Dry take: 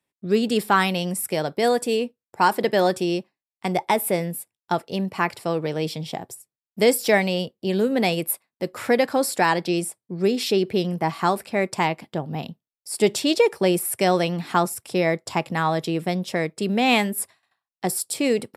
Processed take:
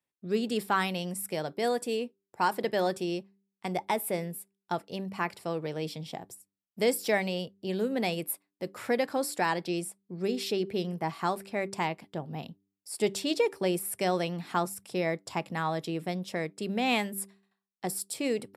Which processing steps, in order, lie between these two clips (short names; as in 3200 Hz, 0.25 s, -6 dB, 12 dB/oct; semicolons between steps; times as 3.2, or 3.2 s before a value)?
de-hum 98.06 Hz, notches 4; gain -8.5 dB